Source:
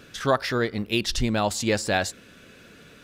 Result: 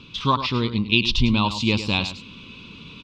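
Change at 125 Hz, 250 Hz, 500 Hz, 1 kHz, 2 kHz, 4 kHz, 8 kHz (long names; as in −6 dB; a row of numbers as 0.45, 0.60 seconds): +6.5, +5.0, −5.0, +3.0, +2.5, +7.0, −9.0 decibels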